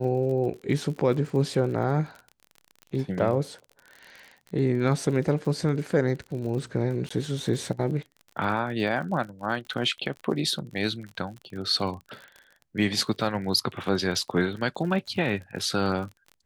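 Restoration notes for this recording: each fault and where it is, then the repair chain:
surface crackle 43 per second −35 dBFS
0:07.09–0:07.11: drop-out 15 ms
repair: click removal
repair the gap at 0:07.09, 15 ms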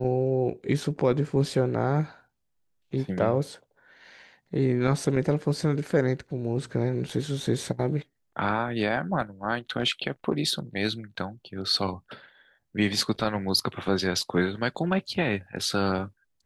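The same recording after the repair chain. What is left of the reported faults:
none of them is left

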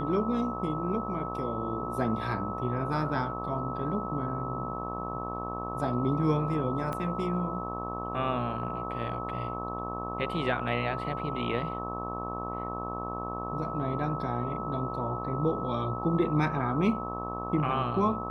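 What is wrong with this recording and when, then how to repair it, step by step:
mains buzz 60 Hz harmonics 20 −37 dBFS
whistle 1,300 Hz −36 dBFS
0:06.93: click −21 dBFS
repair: click removal
hum removal 60 Hz, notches 20
notch filter 1,300 Hz, Q 30

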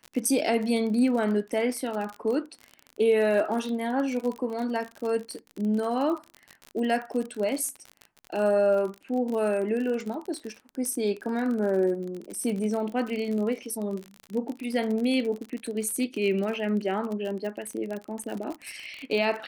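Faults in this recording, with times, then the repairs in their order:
surface crackle 42 per second −31 dBFS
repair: click removal

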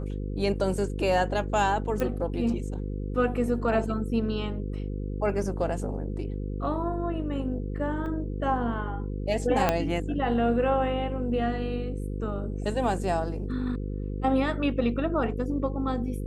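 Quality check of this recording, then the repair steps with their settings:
mains buzz 50 Hz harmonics 10 −32 dBFS
0:02.00: click −17 dBFS
0:08.06: drop-out 2.5 ms
0:09.69: click −8 dBFS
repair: click removal
hum removal 50 Hz, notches 10
repair the gap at 0:08.06, 2.5 ms

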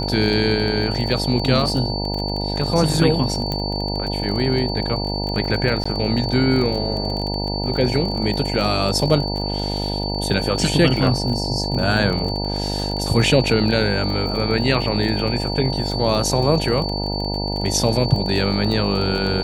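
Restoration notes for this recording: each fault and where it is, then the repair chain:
mains buzz 50 Hz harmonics 19 −25 dBFS
surface crackle 31 per second −25 dBFS
whistle 4,500 Hz −27 dBFS
0:03.52: click −10 dBFS
0:05.84–0:05.86: drop-out 15 ms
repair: click removal
notch filter 4,500 Hz, Q 30
hum removal 50 Hz, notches 19
repair the gap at 0:05.84, 15 ms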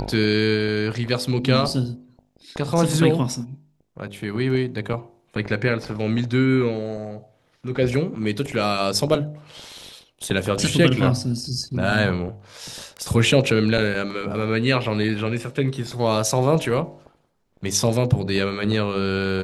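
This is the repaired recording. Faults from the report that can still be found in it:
none of them is left

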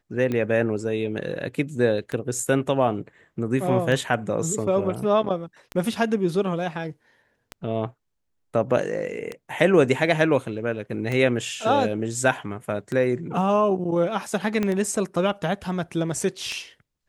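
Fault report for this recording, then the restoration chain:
scratch tick 33 1/3 rpm −16 dBFS
0:14.63: click −12 dBFS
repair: click removal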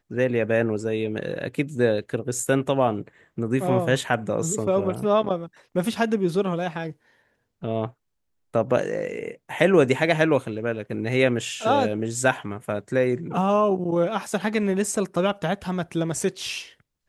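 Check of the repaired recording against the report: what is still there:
0:14.63: click

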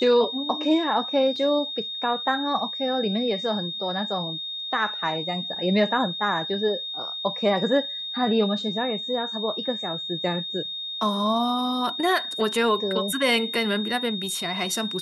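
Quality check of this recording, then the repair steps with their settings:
whistle 3,700 Hz −30 dBFS
0:01.36: drop-out 2.5 ms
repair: notch filter 3,700 Hz, Q 30
repair the gap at 0:01.36, 2.5 ms

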